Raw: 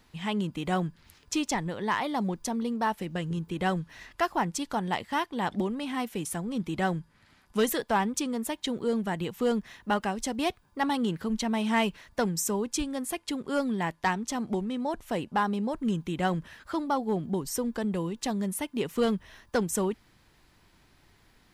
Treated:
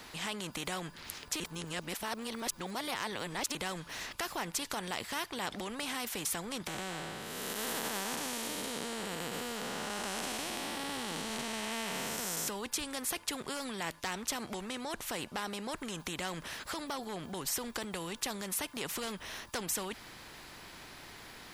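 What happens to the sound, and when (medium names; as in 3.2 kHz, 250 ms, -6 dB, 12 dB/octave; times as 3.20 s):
1.40–3.55 s: reverse
6.67–12.48 s: spectral blur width 486 ms
whole clip: peak limiter -25.5 dBFS; bass shelf 170 Hz -10 dB; spectrum-flattening compressor 2:1; trim +7 dB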